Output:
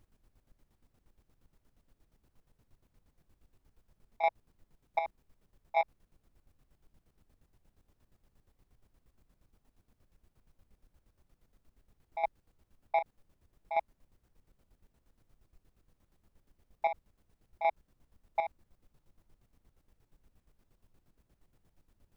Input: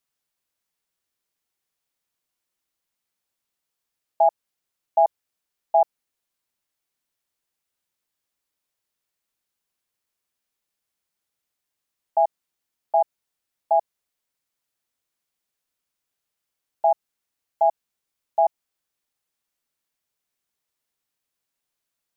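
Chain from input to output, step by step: soft clip -14.5 dBFS, distortion -15 dB; HPF 1000 Hz; added noise brown -63 dBFS; chopper 8.5 Hz, depth 65%, duty 40%

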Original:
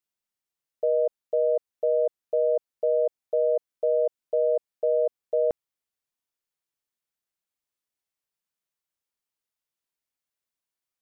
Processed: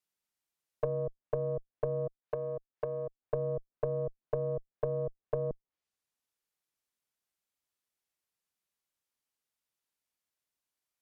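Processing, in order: one diode to ground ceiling -27 dBFS; treble ducked by the level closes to 340 Hz, closed at -27 dBFS; 2.07–3.21 tilt +2.5 dB/oct

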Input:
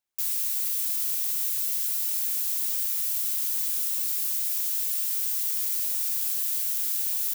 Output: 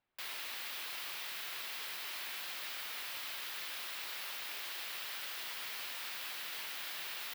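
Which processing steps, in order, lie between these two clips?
air absorption 390 m; gain +10.5 dB

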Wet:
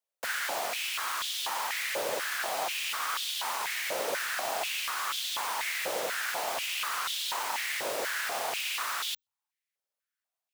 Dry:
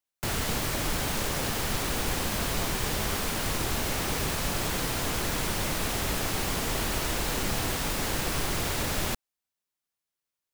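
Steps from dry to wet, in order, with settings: frequency shift +94 Hz; stepped high-pass 4.1 Hz 540–3400 Hz; gain -4.5 dB

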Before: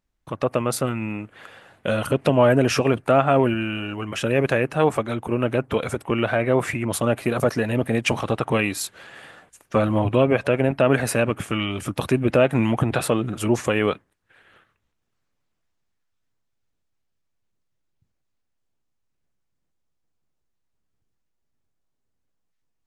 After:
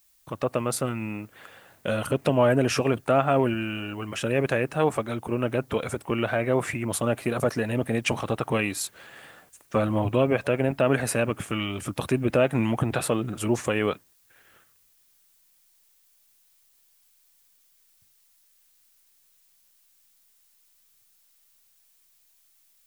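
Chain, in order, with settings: bell 8600 Hz +3.5 dB 0.66 oct; added noise blue -59 dBFS; gain -4 dB

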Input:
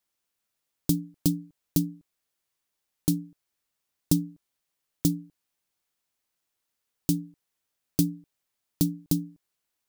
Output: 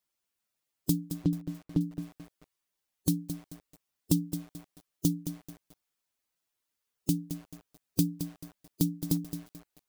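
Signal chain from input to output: bin magnitudes rounded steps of 15 dB; 1.13–1.81 LPF 1900 Hz 12 dB/oct; lo-fi delay 0.218 s, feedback 35%, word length 7-bit, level -9.5 dB; gain -2.5 dB

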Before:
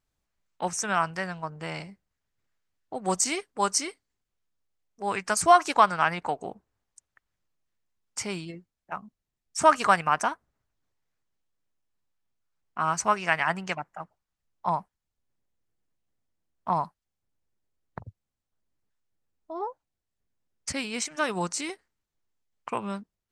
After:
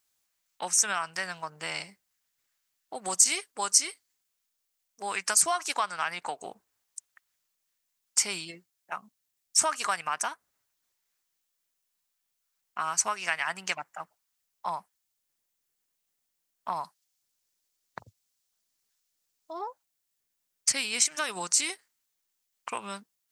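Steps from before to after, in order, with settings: 16.84–19.53 bell 5400 Hz +5.5 dB 1.4 oct; compressor 2.5:1, threshold -30 dBFS, peak gain reduction 12 dB; tilt +4 dB/oct

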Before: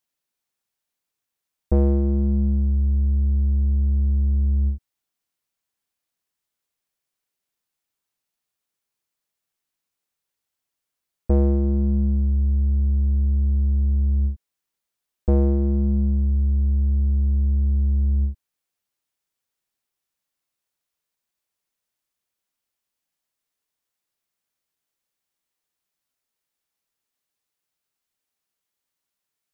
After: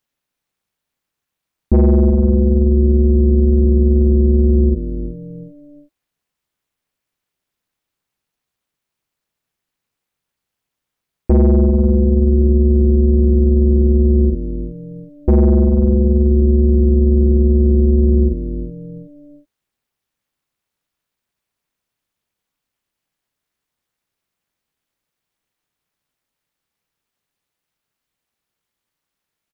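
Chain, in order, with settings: low shelf 200 Hz -6 dB; in parallel at -8 dB: soft clip -25 dBFS, distortion -12 dB; on the sum: tone controls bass +10 dB, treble -6 dB; on a send: frequency-shifting echo 0.367 s, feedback 34%, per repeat -120 Hz, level -13.5 dB; on the sum: limiter -10.5 dBFS, peak gain reduction 4 dB; AM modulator 300 Hz, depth 75%; gain +7 dB

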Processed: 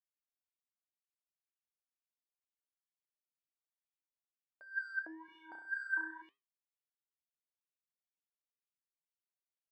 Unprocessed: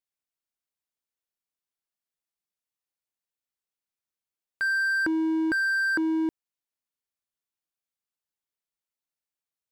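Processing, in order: wah 2.1 Hz 550–3000 Hz, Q 8; 5.25–6.22 flutter echo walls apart 5.7 m, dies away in 0.54 s; flange 1.1 Hz, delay 8.4 ms, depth 6.2 ms, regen -79%

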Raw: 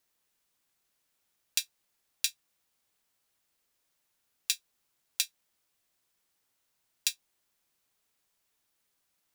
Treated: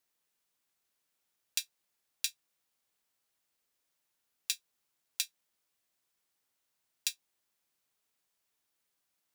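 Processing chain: low shelf 97 Hz -6 dB; gain -4 dB

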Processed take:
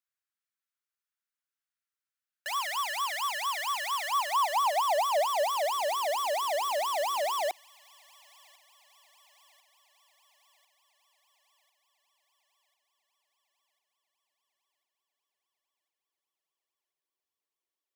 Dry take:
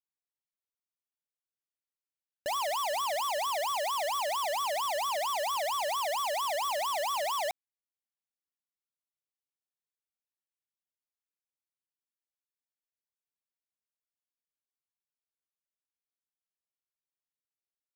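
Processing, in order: thin delay 1.046 s, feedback 59%, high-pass 1900 Hz, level -21.5 dB; high-pass sweep 1400 Hz -> 360 Hz, 3.97–5.81

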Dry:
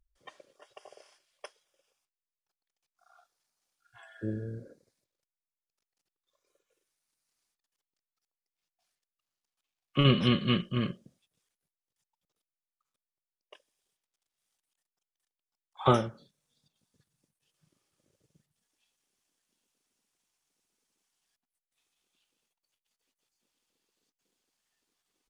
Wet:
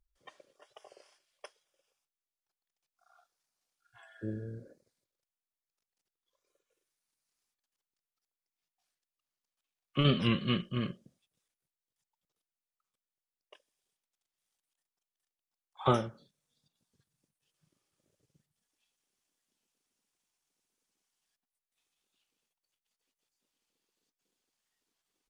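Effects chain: record warp 45 rpm, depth 100 cents; gain -3.5 dB

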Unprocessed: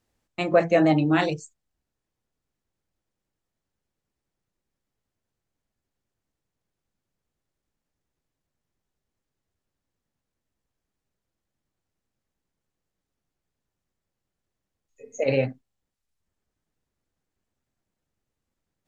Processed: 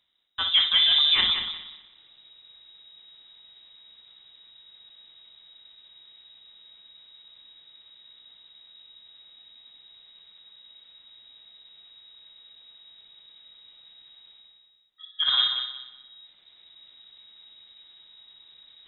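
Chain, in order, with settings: notch 1200 Hz, Q 7.3; reverse; upward compressor, threshold -38 dBFS; reverse; soft clip -13 dBFS, distortion -17 dB; multi-head echo 61 ms, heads first and third, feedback 42%, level -8.5 dB; inverted band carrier 3800 Hz

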